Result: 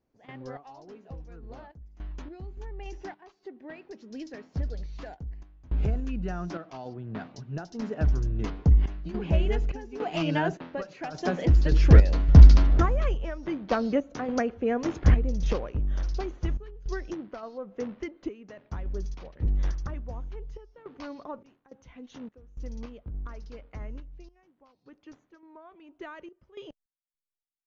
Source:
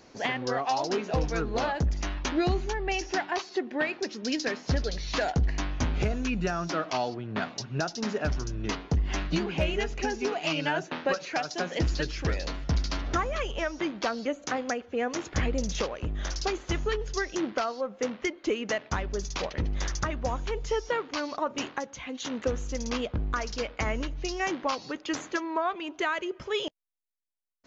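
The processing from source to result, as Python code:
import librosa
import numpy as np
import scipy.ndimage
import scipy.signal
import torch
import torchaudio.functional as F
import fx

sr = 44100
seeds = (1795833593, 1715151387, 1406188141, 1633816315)

y = fx.doppler_pass(x, sr, speed_mps=10, closest_m=11.0, pass_at_s=12.56)
y = fx.tilt_eq(y, sr, slope=-3.0)
y = fx.tremolo_random(y, sr, seeds[0], hz=3.5, depth_pct=95)
y = y * librosa.db_to_amplitude(8.5)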